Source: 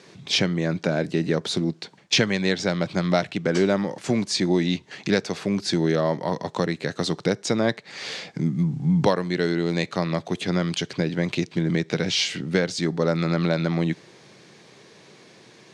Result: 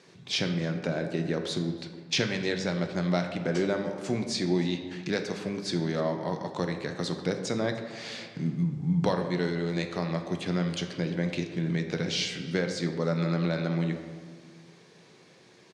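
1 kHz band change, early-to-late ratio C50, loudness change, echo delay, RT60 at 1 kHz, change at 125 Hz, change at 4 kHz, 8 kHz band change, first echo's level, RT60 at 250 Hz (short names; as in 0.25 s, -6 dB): -6.0 dB, 7.5 dB, -6.0 dB, 0.303 s, 1.5 s, -4.5 dB, -6.5 dB, -7.0 dB, -23.0 dB, 2.0 s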